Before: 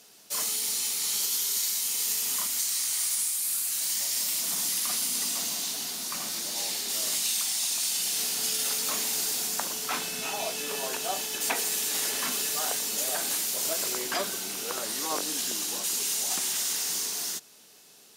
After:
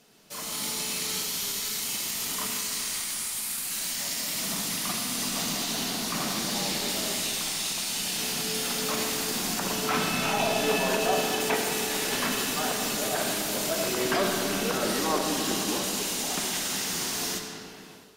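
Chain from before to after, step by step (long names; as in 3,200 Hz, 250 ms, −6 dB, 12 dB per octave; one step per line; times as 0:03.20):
in parallel at −10 dB: soft clipping −27 dBFS, distortion −13 dB
on the sum: brickwall limiter −21 dBFS, peak gain reduction 7.5 dB
bass and treble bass +6 dB, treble −8 dB
on a send at −2.5 dB: convolution reverb RT60 2.9 s, pre-delay 25 ms
on the sum: automatic gain control gain up to 9 dB
low-shelf EQ 440 Hz +3.5 dB
level −4.5 dB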